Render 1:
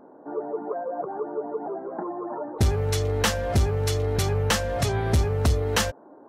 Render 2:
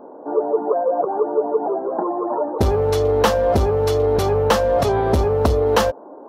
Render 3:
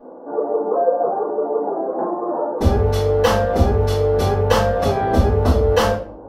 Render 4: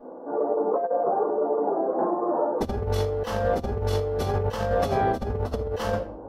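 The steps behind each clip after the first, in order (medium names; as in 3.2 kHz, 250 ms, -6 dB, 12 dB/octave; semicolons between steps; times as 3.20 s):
graphic EQ 125/250/500/1000/2000/8000 Hz -5/+3/+8/+7/-5/-8 dB; trim +3 dB
simulated room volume 45 m³, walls mixed, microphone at 2.4 m; trim -11.5 dB
compressor with a negative ratio -19 dBFS, ratio -0.5; trim -5 dB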